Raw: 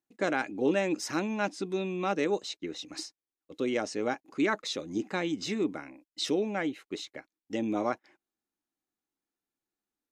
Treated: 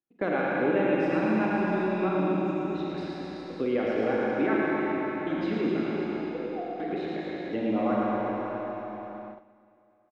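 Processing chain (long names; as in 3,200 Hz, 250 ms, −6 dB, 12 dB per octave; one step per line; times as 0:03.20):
feedback delay that plays each chunk backwards 107 ms, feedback 64%, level −10.5 dB
0:02.09–0:02.75: Chebyshev band-stop filter 330–6,400 Hz, order 4
0:04.56–0:05.27: guitar amp tone stack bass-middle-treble 10-0-1
0:06.05–0:06.80: envelope filter 500–2,300 Hz, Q 20, down, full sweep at −24 dBFS
reverse bouncing-ball delay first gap 110 ms, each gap 1.15×, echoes 5
four-comb reverb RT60 3 s, combs from 33 ms, DRR −3 dB
noise gate −46 dBFS, range −15 dB
high-frequency loss of the air 460 metres
multiband upward and downward compressor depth 40%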